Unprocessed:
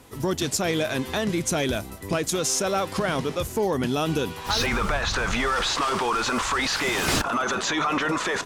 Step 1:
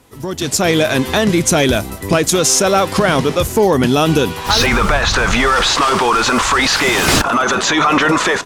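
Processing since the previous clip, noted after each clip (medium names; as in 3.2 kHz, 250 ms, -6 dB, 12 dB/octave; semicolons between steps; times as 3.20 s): level rider gain up to 13.5 dB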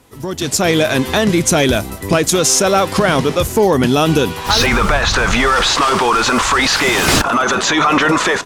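no audible change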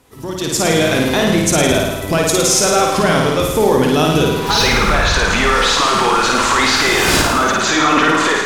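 hum notches 60/120/180/240 Hz; on a send: flutter echo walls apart 9.3 m, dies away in 1.1 s; on the sum: trim -3 dB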